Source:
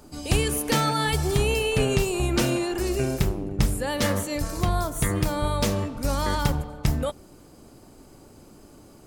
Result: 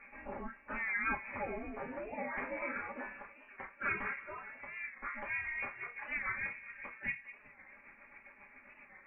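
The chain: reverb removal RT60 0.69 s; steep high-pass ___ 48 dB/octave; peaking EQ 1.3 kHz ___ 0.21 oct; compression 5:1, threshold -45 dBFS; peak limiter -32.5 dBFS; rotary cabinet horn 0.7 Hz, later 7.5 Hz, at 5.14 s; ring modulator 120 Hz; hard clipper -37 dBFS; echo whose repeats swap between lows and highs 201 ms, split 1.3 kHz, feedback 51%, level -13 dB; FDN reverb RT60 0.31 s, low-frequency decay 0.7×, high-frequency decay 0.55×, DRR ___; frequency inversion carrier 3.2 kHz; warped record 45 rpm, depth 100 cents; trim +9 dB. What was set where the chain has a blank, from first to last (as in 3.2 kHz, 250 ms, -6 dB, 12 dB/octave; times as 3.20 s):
930 Hz, -8 dB, -6 dB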